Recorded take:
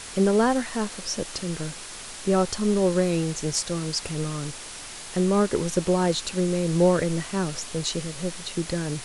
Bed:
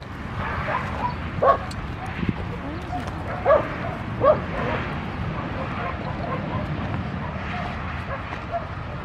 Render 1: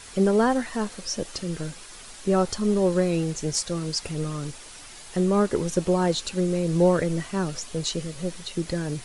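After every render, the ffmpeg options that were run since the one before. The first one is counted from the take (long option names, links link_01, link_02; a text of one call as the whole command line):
ffmpeg -i in.wav -af "afftdn=noise_reduction=7:noise_floor=-39" out.wav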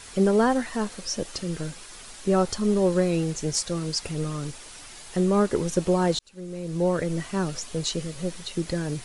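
ffmpeg -i in.wav -filter_complex "[0:a]asplit=2[link_01][link_02];[link_01]atrim=end=6.19,asetpts=PTS-STARTPTS,afade=type=out:start_time=6.186:duration=0.004:curve=hsin[link_03];[link_02]atrim=start=6.19,asetpts=PTS-STARTPTS,afade=type=in:duration=1.12[link_04];[link_03][link_04]concat=n=2:v=0:a=1" out.wav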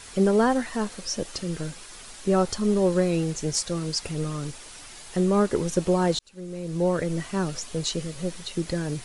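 ffmpeg -i in.wav -af anull out.wav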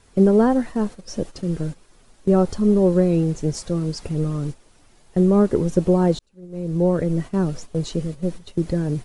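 ffmpeg -i in.wav -af "agate=range=-10dB:threshold=-34dB:ratio=16:detection=peak,tiltshelf=frequency=890:gain=7.5" out.wav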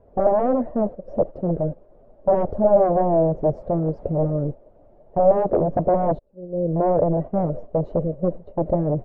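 ffmpeg -i in.wav -af "aeval=exprs='0.126*(abs(mod(val(0)/0.126+3,4)-2)-1)':channel_layout=same,lowpass=frequency=600:width_type=q:width=6.7" out.wav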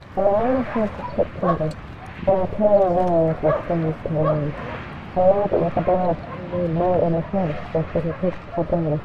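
ffmpeg -i in.wav -i bed.wav -filter_complex "[1:a]volume=-5.5dB[link_01];[0:a][link_01]amix=inputs=2:normalize=0" out.wav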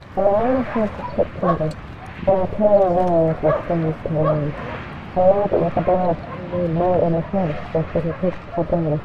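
ffmpeg -i in.wav -af "volume=1.5dB" out.wav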